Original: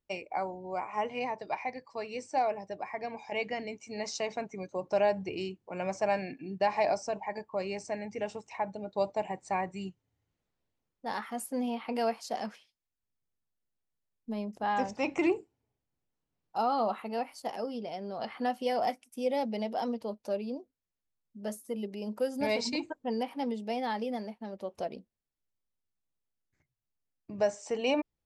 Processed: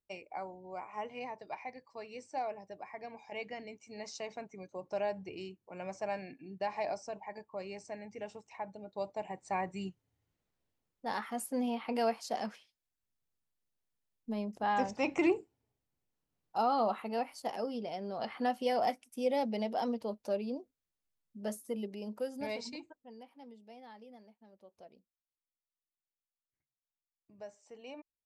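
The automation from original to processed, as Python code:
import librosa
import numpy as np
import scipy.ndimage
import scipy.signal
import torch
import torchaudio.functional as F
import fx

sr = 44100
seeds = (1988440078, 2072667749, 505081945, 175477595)

y = fx.gain(x, sr, db=fx.line((9.08, -8.0), (9.76, -1.0), (21.67, -1.0), (22.7, -10.5), (23.05, -19.5)))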